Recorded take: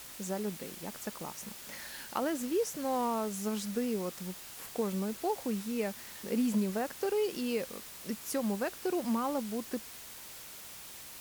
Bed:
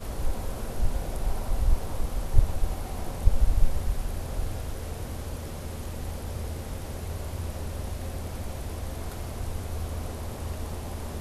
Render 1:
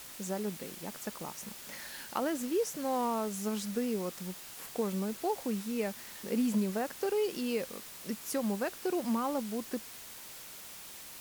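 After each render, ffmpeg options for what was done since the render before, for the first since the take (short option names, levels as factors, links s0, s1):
-af "bandreject=f=60:t=h:w=4,bandreject=f=120:t=h:w=4"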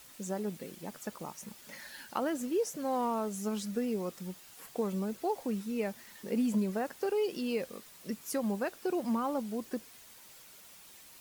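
-af "afftdn=nr=8:nf=-48"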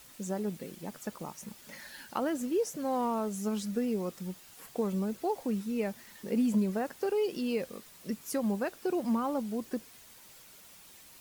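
-af "lowshelf=f=270:g=4"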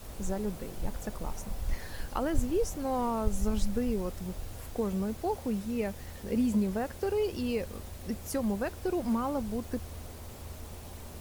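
-filter_complex "[1:a]volume=0.316[s0];[0:a][s0]amix=inputs=2:normalize=0"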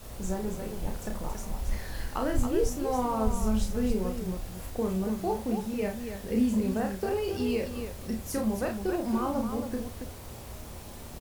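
-filter_complex "[0:a]asplit=2[s0][s1];[s1]adelay=50,volume=0.282[s2];[s0][s2]amix=inputs=2:normalize=0,aecho=1:1:32.07|277:0.631|0.447"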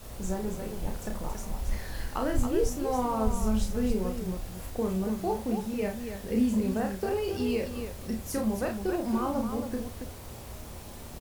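-af anull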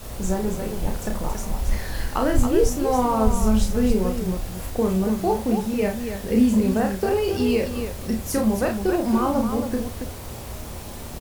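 -af "volume=2.51"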